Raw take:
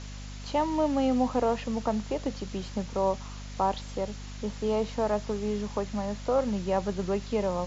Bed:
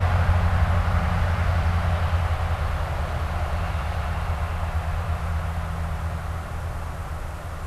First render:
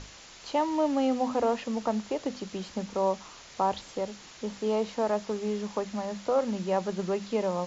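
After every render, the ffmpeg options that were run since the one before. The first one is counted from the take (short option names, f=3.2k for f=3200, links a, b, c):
-af "bandreject=f=50:t=h:w=6,bandreject=f=100:t=h:w=6,bandreject=f=150:t=h:w=6,bandreject=f=200:t=h:w=6,bandreject=f=250:t=h:w=6"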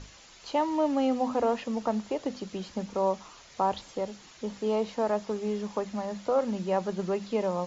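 -af "afftdn=nr=6:nf=-50"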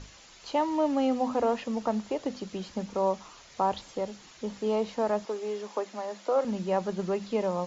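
-filter_complex "[0:a]asettb=1/sr,asplit=3[a][b][c];[a]atrim=end=5.254[d];[b]atrim=start=5.25:end=6.45,asetpts=PTS-STARTPTS,afade=t=in:d=0.004:c=qsin,afade=t=out:st=1.196:d=0.004:c=qsin,highpass=f=290:w=0.5412,highpass=f=290:w=1.3066[e];[c]atrim=start=6.446[f];[d][e]acrossfade=d=0.004:c1=hsin:c2=qsin[g];[g][f]acrossfade=d=0.004:c1=qsin:c2=hsin"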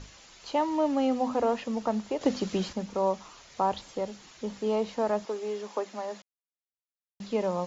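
-filter_complex "[0:a]asettb=1/sr,asplit=3[a][b][c];[a]atrim=end=2.214[d];[b]atrim=start=2.21:end=2.73,asetpts=PTS-STARTPTS,afade=t=in:d=0.004:c=qsin,afade=t=out:st=0.516:d=0.004:c=qsin,acontrast=80[e];[c]atrim=start=2.726[f];[d][e]acrossfade=d=0.004:c1=hsin:c2=qsin[g];[g][f]acrossfade=d=0.004:c1=qsin:c2=hsin,asplit=3[h][i][j];[h]atrim=end=6.22,asetpts=PTS-STARTPTS,afade=t=out:st=6.216:d=0.004:c=hsin[k];[i]atrim=start=6.22:end=7.2,asetpts=PTS-STARTPTS,volume=0[l];[j]atrim=start=7.2,asetpts=PTS-STARTPTS,afade=t=in:d=0.004:c=hsin[m];[k][l][m]concat=n=3:v=0:a=1"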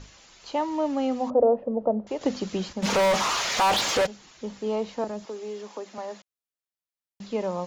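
-filter_complex "[0:a]asettb=1/sr,asplit=3[a][b][c];[a]atrim=end=1.304[d];[b]atrim=start=1.3:end=2.07,asetpts=PTS-STARTPTS,afade=t=in:d=0.004:c=qsin,afade=t=out:st=0.766:d=0.004:c=qsin,lowpass=f=560:t=q:w=3.5[e];[c]atrim=start=2.066[f];[d][e]acrossfade=d=0.004:c1=hsin:c2=qsin[g];[g][f]acrossfade=d=0.004:c1=qsin:c2=hsin,asplit=3[h][i][j];[h]afade=t=out:st=2.82:d=0.02[k];[i]asplit=2[l][m];[m]highpass=f=720:p=1,volume=37dB,asoftclip=type=tanh:threshold=-14.5dB[n];[l][n]amix=inputs=2:normalize=0,lowpass=f=4.7k:p=1,volume=-6dB,afade=t=in:st=2.82:d=0.02,afade=t=out:st=4.05:d=0.02[o];[j]afade=t=in:st=4.05:d=0.02[p];[k][o][p]amix=inputs=3:normalize=0,asettb=1/sr,asplit=3[q][r][s];[q]atrim=end=5.044[t];[r]atrim=start=5.04:end=5.98,asetpts=PTS-STARTPTS,afade=t=in:d=0.004:c=qsin,afade=t=out:st=0.936:d=0.004:c=qsin,acrossover=split=380|3000[u][v][w];[v]acompressor=threshold=-39dB:ratio=3:attack=3.2:release=140:knee=2.83:detection=peak[x];[u][x][w]amix=inputs=3:normalize=0[y];[s]atrim=start=5.976[z];[t][y]acrossfade=d=0.004:c1=hsin:c2=qsin[aa];[aa][z]acrossfade=d=0.004:c1=qsin:c2=hsin"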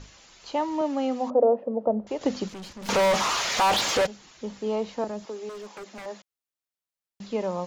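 -filter_complex "[0:a]asettb=1/sr,asplit=3[a][b][c];[a]atrim=end=0.814[d];[b]atrim=start=0.81:end=1.87,asetpts=PTS-STARTPTS,afade=t=in:d=0.004:c=qsin,afade=t=out:st=1.056:d=0.004:c=qsin,highpass=200[e];[c]atrim=start=1.866[f];[d][e]acrossfade=d=0.004:c1=hsin:c2=qsin[g];[g][f]acrossfade=d=0.004:c1=qsin:c2=hsin,asettb=1/sr,asplit=3[h][i][j];[h]atrim=end=2.484[k];[i]atrim=start=2.48:end=2.89,asetpts=PTS-STARTPTS,afade=t=in:d=0.004:c=qsin,afade=t=out:st=0.406:d=0.004:c=qsin,aeval=exprs='(tanh(70.8*val(0)+0.4)-tanh(0.4))/70.8':c=same[l];[j]atrim=start=2.886[m];[k][l]acrossfade=d=0.004:c1=hsin:c2=qsin[n];[n][m]acrossfade=d=0.004:c1=qsin:c2=hsin,asettb=1/sr,asplit=3[o][p][q];[o]atrim=end=5.494[r];[p]atrim=start=5.49:end=6.06,asetpts=PTS-STARTPTS,afade=t=in:d=0.004:c=qsin,afade=t=out:st=0.566:d=0.004:c=qsin,aeval=exprs='0.02*(abs(mod(val(0)/0.02+3,4)-2)-1)':c=same[s];[q]atrim=start=6.056[t];[r][s]acrossfade=d=0.004:c1=hsin:c2=qsin[u];[u][t]acrossfade=d=0.004:c1=qsin:c2=hsin"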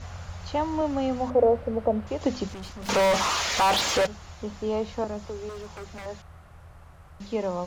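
-filter_complex "[1:a]volume=-18.5dB[a];[0:a][a]amix=inputs=2:normalize=0"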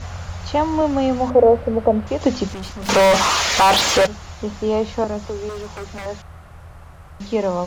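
-af "volume=8dB,alimiter=limit=-2dB:level=0:latency=1"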